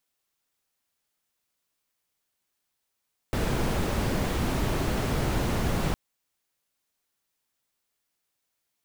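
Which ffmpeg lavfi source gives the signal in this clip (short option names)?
-f lavfi -i "anoisesrc=c=brown:a=0.234:d=2.61:r=44100:seed=1"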